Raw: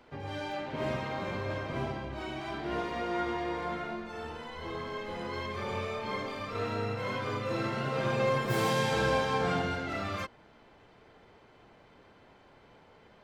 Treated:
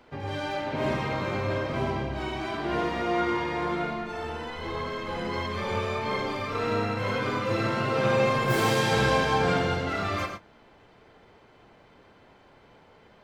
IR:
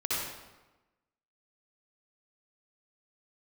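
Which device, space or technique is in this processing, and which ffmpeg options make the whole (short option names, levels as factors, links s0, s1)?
keyed gated reverb: -filter_complex "[0:a]asplit=3[s0][s1][s2];[1:a]atrim=start_sample=2205[s3];[s1][s3]afir=irnorm=-1:irlink=0[s4];[s2]apad=whole_len=583684[s5];[s4][s5]sidechaingate=range=0.0224:threshold=0.00355:ratio=16:detection=peak,volume=0.355[s6];[s0][s6]amix=inputs=2:normalize=0,volume=1.33"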